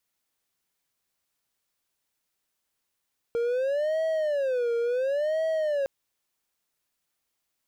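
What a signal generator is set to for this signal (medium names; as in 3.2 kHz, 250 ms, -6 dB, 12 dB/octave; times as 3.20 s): siren wail 467–643 Hz 0.71 per s triangle -21.5 dBFS 2.51 s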